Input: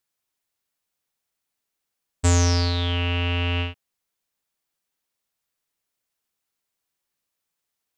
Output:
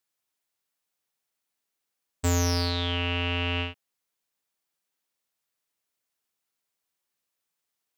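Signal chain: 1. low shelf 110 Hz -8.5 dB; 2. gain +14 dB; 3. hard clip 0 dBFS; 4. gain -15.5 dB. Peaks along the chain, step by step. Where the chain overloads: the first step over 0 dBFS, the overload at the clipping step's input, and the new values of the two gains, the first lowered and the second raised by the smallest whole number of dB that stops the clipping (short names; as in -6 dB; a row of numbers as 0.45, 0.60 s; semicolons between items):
-7.0, +7.0, 0.0, -15.5 dBFS; step 2, 7.0 dB; step 2 +7 dB, step 4 -8.5 dB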